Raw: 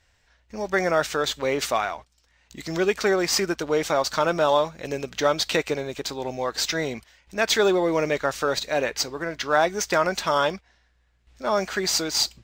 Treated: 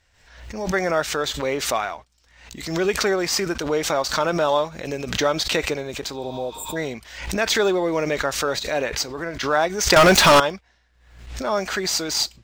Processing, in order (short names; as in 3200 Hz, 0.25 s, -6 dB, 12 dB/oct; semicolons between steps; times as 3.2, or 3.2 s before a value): 6.22–6.74 spectral repair 820–7100 Hz before; 9.96–10.4 sample leveller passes 5; backwards sustainer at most 72 dB/s